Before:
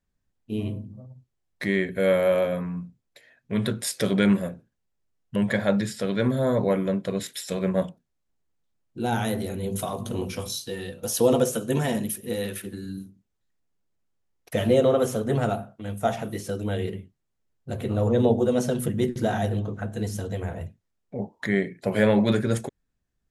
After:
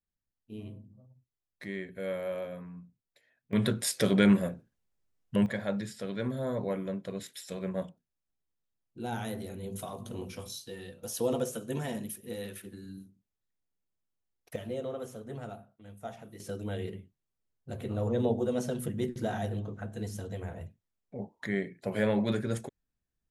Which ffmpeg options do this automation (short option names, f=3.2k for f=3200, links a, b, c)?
-af "asetnsamples=n=441:p=0,asendcmd='3.53 volume volume -2dB;5.46 volume volume -10dB;14.56 volume volume -17dB;16.4 volume volume -8dB',volume=-14dB"